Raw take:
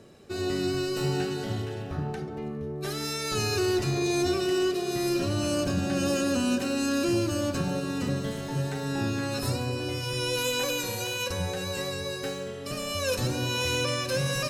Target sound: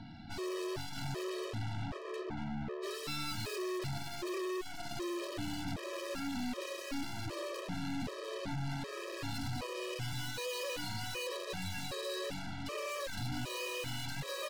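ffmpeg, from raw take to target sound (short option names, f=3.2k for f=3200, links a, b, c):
-filter_complex "[0:a]asplit=2[a][b];[b]aecho=0:1:128:0.15[c];[a][c]amix=inputs=2:normalize=0,aresample=11025,aresample=44100,aeval=exprs='(tanh(178*val(0)+0.5)-tanh(0.5))/178':c=same,afftfilt=real='re*gt(sin(2*PI*1.3*pts/sr)*(1-2*mod(floor(b*sr/1024/330),2)),0)':imag='im*gt(sin(2*PI*1.3*pts/sr)*(1-2*mod(floor(b*sr/1024/330),2)),0)':win_size=1024:overlap=0.75,volume=9dB"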